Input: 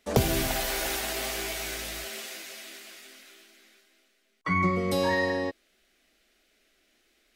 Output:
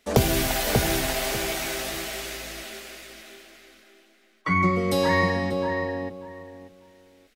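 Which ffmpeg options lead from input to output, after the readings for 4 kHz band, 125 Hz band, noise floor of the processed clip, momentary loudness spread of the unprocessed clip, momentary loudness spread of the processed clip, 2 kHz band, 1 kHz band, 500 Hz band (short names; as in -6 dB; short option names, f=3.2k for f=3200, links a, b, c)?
+4.0 dB, +5.5 dB, -60 dBFS, 17 LU, 19 LU, +4.0 dB, +4.5 dB, +4.5 dB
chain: -filter_complex "[0:a]asplit=2[a][b];[b]adelay=589,lowpass=f=1.4k:p=1,volume=-3dB,asplit=2[c][d];[d]adelay=589,lowpass=f=1.4k:p=1,volume=0.23,asplit=2[e][f];[f]adelay=589,lowpass=f=1.4k:p=1,volume=0.23[g];[a][c][e][g]amix=inputs=4:normalize=0,volume=3.5dB"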